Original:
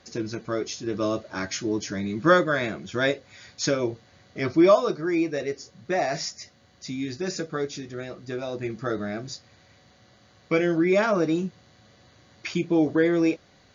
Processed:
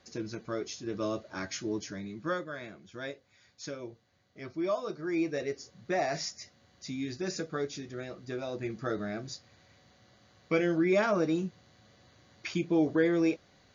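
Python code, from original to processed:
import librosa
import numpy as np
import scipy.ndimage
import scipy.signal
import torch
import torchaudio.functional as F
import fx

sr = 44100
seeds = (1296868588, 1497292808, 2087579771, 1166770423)

y = fx.gain(x, sr, db=fx.line((1.76, -7.0), (2.39, -16.0), (4.59, -16.0), (5.25, -5.0)))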